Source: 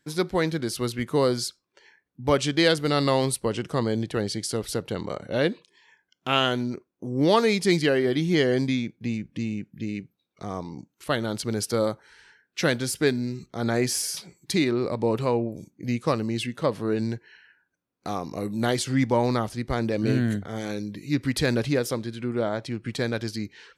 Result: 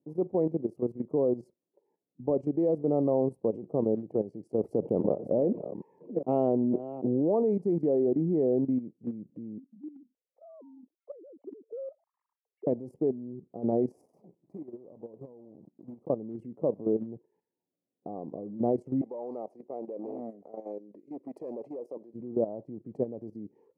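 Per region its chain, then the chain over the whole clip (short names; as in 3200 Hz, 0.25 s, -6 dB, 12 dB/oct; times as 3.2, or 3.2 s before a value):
4.58–7.32 reverse delay 0.412 s, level -12.5 dB + fast leveller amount 50%
9.58–12.67 sine-wave speech + compressor 2:1, threshold -47 dBFS
14.01–16.1 block floating point 3-bit + notch 1400 Hz, Q 22 + compressor 5:1, threshold -38 dBFS
19.01–22.14 overloaded stage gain 20.5 dB + HPF 490 Hz + bell 3500 Hz +5 dB 1.6 oct
whole clip: inverse Chebyshev low-pass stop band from 1400 Hz, stop band 40 dB; level quantiser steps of 13 dB; HPF 200 Hz 12 dB/oct; gain +2 dB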